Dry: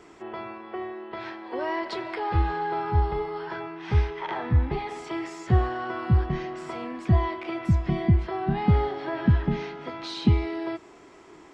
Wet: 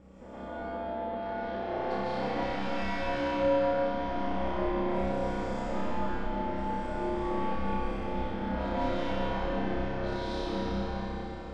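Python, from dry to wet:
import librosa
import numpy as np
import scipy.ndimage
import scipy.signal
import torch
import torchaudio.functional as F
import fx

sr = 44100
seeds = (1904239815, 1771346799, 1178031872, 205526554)

p1 = fx.peak_eq(x, sr, hz=490.0, db=14.0, octaves=1.2)
p2 = fx.comb_fb(p1, sr, f0_hz=830.0, decay_s=0.28, harmonics='all', damping=0.0, mix_pct=70)
p3 = 10.0 ** (-31.5 / 20.0) * np.tanh(p2 / 10.0 ** (-31.5 / 20.0))
p4 = fx.add_hum(p3, sr, base_hz=60, snr_db=12)
p5 = p4 * np.sin(2.0 * np.pi * 130.0 * np.arange(len(p4)) / sr)
p6 = p5 + fx.room_flutter(p5, sr, wall_m=5.3, rt60_s=1.1, dry=0)
p7 = fx.rev_freeverb(p6, sr, rt60_s=4.2, hf_ratio=0.85, predelay_ms=100, drr_db=-9.0)
y = p7 * librosa.db_to_amplitude(-5.5)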